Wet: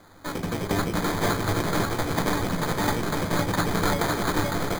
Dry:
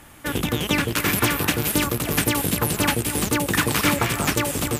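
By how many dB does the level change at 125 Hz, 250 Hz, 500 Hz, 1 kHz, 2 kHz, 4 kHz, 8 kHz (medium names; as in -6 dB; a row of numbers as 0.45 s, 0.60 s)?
-2.5 dB, -3.0 dB, -0.5 dB, -0.5 dB, -5.5 dB, -7.0 dB, -10.0 dB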